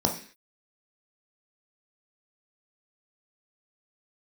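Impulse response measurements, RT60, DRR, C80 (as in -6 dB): 0.45 s, 1.5 dB, 14.5 dB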